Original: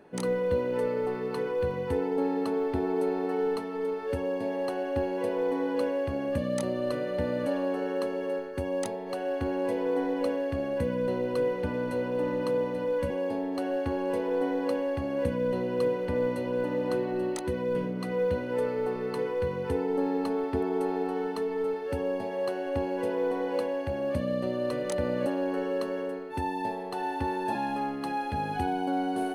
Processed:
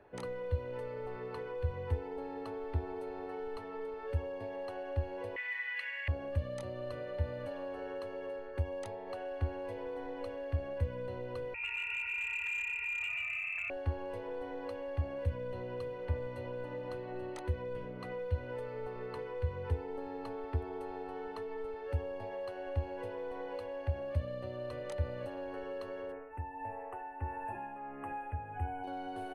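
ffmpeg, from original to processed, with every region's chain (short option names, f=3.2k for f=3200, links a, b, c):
-filter_complex "[0:a]asettb=1/sr,asplit=3[a][b][c];[a]atrim=end=5.364[d];[b]atrim=start=5.36:end=6.08,asetpts=PTS-STARTPTS,afade=t=in:d=0.004:c=qsin,afade=t=out:st=0.716:d=0.004:c=qsin,highpass=f=1.9k:t=q:w=15,equalizer=f=2.6k:t=o:w=0.66:g=10[e];[c]atrim=start=6.076[f];[d][e]acrossfade=d=0.004:c1=hsin:c2=qsin[g];[g][f]acrossfade=d=0.004:c1=qsin:c2=hsin,asettb=1/sr,asplit=3[h][i][j];[h]atrim=end=11.544[k];[i]atrim=start=11.54:end=13.7,asetpts=PTS-STARTPTS,afade=t=in:d=0.004:c=qsin,afade=t=out:st=2.156:d=0.004:c=qsin,asplit=6[l][m][n][o][p][q];[m]adelay=128,afreqshift=-35,volume=-3.5dB[r];[n]adelay=256,afreqshift=-70,volume=-11.2dB[s];[o]adelay=384,afreqshift=-105,volume=-19dB[t];[p]adelay=512,afreqshift=-140,volume=-26.7dB[u];[q]adelay=640,afreqshift=-175,volume=-34.5dB[v];[l][r][s][t][u][v]amix=inputs=6:normalize=0,atrim=end_sample=95256,lowpass=f=2.5k:t=q:w=0.5098,lowpass=f=2.5k:t=q:w=0.6013,lowpass=f=2.5k:t=q:w=0.9,lowpass=f=2.5k:t=q:w=2.563,afreqshift=-2900,asoftclip=type=hard:threshold=-22.5dB[w];[j]atrim=start=13.696[x];[k][w]acrossfade=d=0.004:c1=hsin:c2=qsin[y];[y][x]acrossfade=d=0.004:c1=qsin:c2=hsin,asettb=1/sr,asplit=3[z][aa][ab];[z]atrim=end=26.124[ac];[aa]atrim=start=26.12:end=28.84,asetpts=PTS-STARTPTS,afade=t=in:d=0.004:c=qsin,afade=t=out:st=2.716:d=0.004:c=qsin,asuperstop=centerf=4500:order=8:qfactor=0.97,bandreject=f=61.76:t=h:w=4,bandreject=f=123.52:t=h:w=4,bandreject=f=185.28:t=h:w=4,bandreject=f=247.04:t=h:w=4,bandreject=f=308.8:t=h:w=4,bandreject=f=370.56:t=h:w=4,bandreject=f=432.32:t=h:w=4,tremolo=f=1.5:d=0.65[ad];[ab]atrim=start=28.836[ae];[ac][ad]acrossfade=d=0.004:c1=hsin:c2=qsin[af];[af][ae]acrossfade=d=0.004:c1=qsin:c2=hsin,firequalizer=gain_entry='entry(100,0);entry(160,-21);entry(580,-14)':delay=0.05:min_phase=1,acrossover=split=130|3000[ag][ah][ai];[ah]acompressor=threshold=-48dB:ratio=6[aj];[ag][aj][ai]amix=inputs=3:normalize=0,bass=f=250:g=-5,treble=f=4k:g=-13,volume=10dB"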